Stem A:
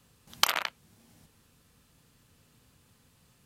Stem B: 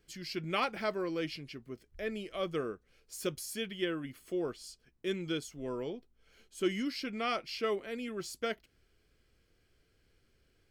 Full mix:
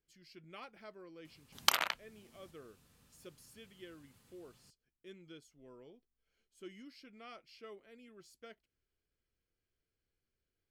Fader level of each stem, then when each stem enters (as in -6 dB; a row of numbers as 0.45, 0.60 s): -4.0, -18.5 dB; 1.25, 0.00 s